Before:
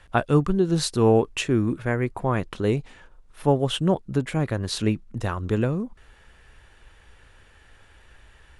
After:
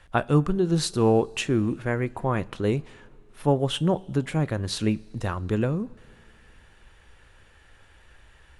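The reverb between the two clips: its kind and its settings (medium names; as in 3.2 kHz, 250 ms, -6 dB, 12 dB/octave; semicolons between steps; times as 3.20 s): two-slope reverb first 0.3 s, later 3.1 s, from -18 dB, DRR 17 dB; trim -1.5 dB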